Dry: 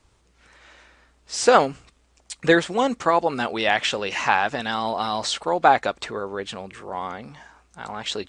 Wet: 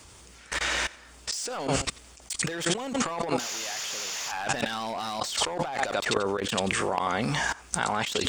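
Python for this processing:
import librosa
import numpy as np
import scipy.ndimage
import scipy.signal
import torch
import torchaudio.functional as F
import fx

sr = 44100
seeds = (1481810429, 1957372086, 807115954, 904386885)

p1 = fx.spec_paint(x, sr, seeds[0], shape='noise', start_s=3.39, length_s=0.93, low_hz=400.0, high_hz=7300.0, level_db=-22.0)
p2 = fx.high_shelf(p1, sr, hz=2400.0, db=6.0)
p3 = 10.0 ** (-14.0 / 20.0) * np.tanh(p2 / 10.0 ** (-14.0 / 20.0))
p4 = p2 + (p3 * librosa.db_to_amplitude(-4.5))
p5 = scipy.signal.sosfilt(scipy.signal.butter(2, 51.0, 'highpass', fs=sr, output='sos'), p4)
p6 = fx.high_shelf(p5, sr, hz=7100.0, db=6.5)
p7 = fx.level_steps(p6, sr, step_db=23)
p8 = p7 + fx.echo_feedback(p7, sr, ms=89, feedback_pct=21, wet_db=-22.0, dry=0)
p9 = np.clip(p8, -10.0 ** (-20.0 / 20.0), 10.0 ** (-20.0 / 20.0))
p10 = fx.over_compress(p9, sr, threshold_db=-38.0, ratio=-1.0)
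p11 = fx.notch(p10, sr, hz=4000.0, q=17.0)
y = p11 * librosa.db_to_amplitude(8.5)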